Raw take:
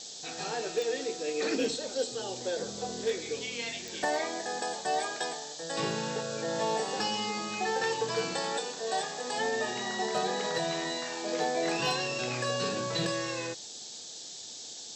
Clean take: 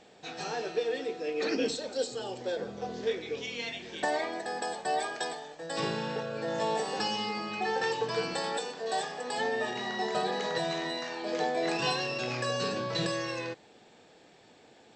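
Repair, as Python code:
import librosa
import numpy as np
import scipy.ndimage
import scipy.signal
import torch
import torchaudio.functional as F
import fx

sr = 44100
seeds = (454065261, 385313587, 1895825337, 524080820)

y = fx.fix_declip(x, sr, threshold_db=-21.0)
y = fx.fix_declick_ar(y, sr, threshold=10.0)
y = fx.noise_reduce(y, sr, print_start_s=13.98, print_end_s=14.48, reduce_db=13.0)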